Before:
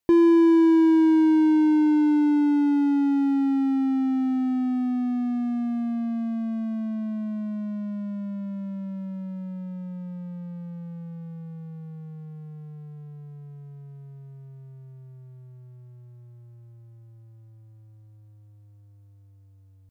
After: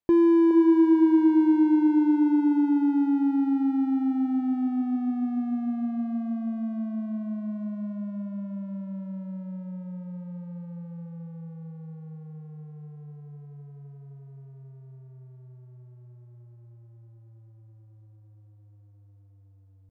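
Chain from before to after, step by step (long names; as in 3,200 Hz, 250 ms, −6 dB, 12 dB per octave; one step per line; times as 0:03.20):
high-shelf EQ 2,500 Hz −11 dB
delay with a band-pass on its return 417 ms, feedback 34%, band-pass 580 Hz, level −6 dB
level −2 dB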